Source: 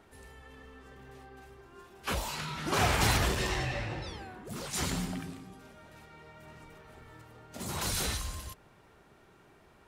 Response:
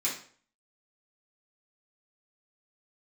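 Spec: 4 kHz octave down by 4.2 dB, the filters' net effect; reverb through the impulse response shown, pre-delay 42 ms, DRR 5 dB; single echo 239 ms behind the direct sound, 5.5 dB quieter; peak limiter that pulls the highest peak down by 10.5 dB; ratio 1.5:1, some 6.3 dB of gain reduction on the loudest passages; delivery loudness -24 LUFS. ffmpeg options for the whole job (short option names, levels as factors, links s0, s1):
-filter_complex "[0:a]equalizer=f=4000:t=o:g=-5.5,acompressor=threshold=0.01:ratio=1.5,alimiter=level_in=2:limit=0.0631:level=0:latency=1,volume=0.501,aecho=1:1:239:0.531,asplit=2[s0][s1];[1:a]atrim=start_sample=2205,adelay=42[s2];[s1][s2]afir=irnorm=-1:irlink=0,volume=0.266[s3];[s0][s3]amix=inputs=2:normalize=0,volume=6.31"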